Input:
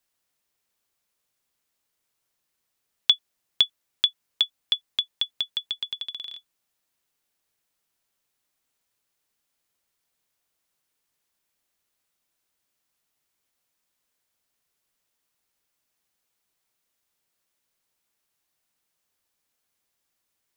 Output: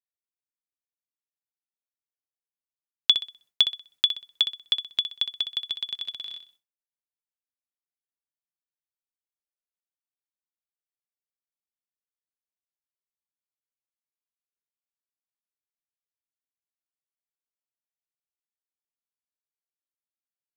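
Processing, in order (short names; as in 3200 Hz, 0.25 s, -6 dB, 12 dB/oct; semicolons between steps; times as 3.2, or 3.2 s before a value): on a send: flutter echo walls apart 10.8 m, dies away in 0.38 s; on the sum: expander -55 dBFS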